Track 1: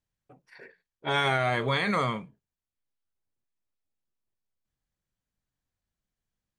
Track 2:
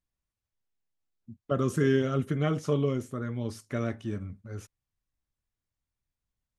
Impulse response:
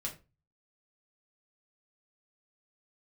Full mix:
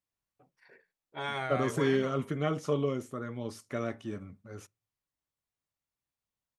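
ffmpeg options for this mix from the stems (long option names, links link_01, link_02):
-filter_complex "[0:a]adelay=100,volume=-11.5dB,afade=type=out:start_time=1.78:duration=0.36:silence=0.251189[link_01];[1:a]highpass=frequency=200:poles=1,equalizer=frequency=1600:width=6.5:gain=-3.5,volume=-2.5dB,asplit=2[link_02][link_03];[link_03]volume=-24dB[link_04];[2:a]atrim=start_sample=2205[link_05];[link_04][link_05]afir=irnorm=-1:irlink=0[link_06];[link_01][link_02][link_06]amix=inputs=3:normalize=0,equalizer=frequency=930:width_type=o:width=2.1:gain=3"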